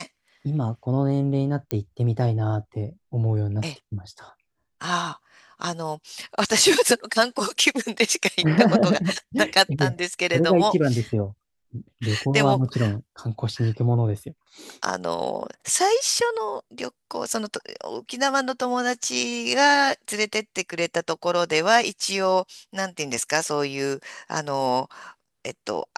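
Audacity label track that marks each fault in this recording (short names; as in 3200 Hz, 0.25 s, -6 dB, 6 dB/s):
1.710000	1.710000	pop -9 dBFS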